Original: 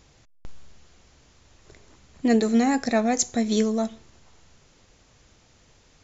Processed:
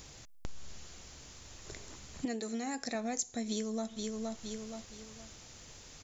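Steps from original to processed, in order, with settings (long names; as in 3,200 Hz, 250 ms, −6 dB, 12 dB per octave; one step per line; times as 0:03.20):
high-shelf EQ 5,000 Hz +11.5 dB
0:03.49–0:03.89: delay throw 470 ms, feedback 30%, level −12 dB
downward compressor 6 to 1, threshold −37 dBFS, peak gain reduction 23 dB
0:02.25–0:02.95: low-shelf EQ 170 Hz −8.5 dB
level +2.5 dB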